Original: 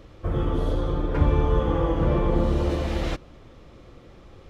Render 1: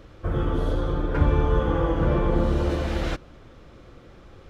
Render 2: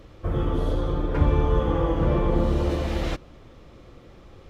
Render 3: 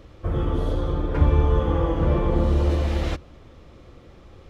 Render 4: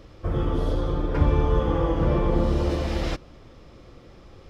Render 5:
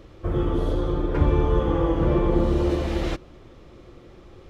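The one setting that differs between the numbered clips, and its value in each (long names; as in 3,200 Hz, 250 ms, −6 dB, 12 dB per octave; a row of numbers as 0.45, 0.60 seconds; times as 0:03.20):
parametric band, centre frequency: 1,500, 15,000, 75, 5,100, 360 Hertz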